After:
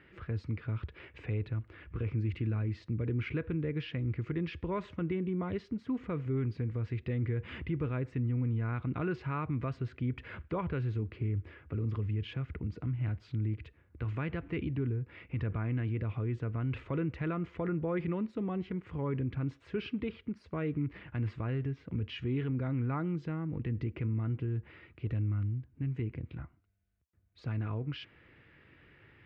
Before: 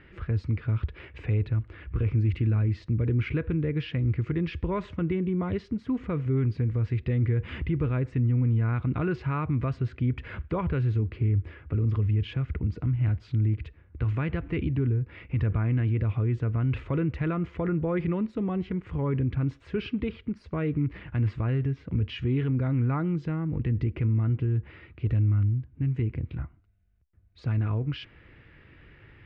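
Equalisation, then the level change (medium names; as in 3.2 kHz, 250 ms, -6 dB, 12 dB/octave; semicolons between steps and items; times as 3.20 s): high-pass 140 Hz 6 dB/octave; -4.5 dB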